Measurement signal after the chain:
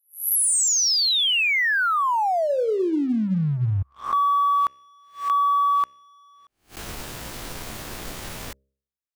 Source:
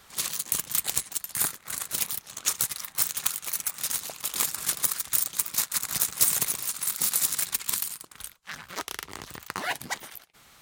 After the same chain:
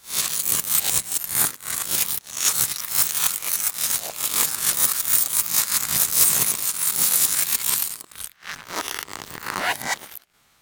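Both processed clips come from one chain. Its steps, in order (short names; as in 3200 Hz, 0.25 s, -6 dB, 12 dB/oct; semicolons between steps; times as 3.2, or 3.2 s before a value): spectral swells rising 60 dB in 0.42 s; de-hum 67.12 Hz, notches 9; sample leveller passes 2; gain -3 dB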